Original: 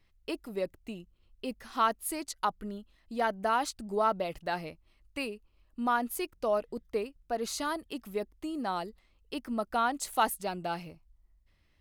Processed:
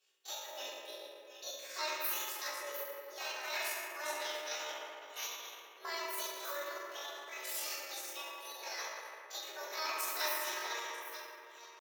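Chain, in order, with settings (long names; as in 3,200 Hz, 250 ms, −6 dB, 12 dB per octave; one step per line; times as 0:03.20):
delay that plays each chunk backwards 486 ms, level −11.5 dB
multi-voice chorus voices 4, 0.24 Hz, delay 26 ms, depth 3.4 ms
parametric band 640 Hz −11.5 dB 2.5 octaves
gate on every frequency bin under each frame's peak −10 dB weak
high-pass filter 360 Hz 24 dB per octave
convolution reverb RT60 2.7 s, pre-delay 4 ms, DRR −8.5 dB
pitch shifter +5.5 semitones
level +3 dB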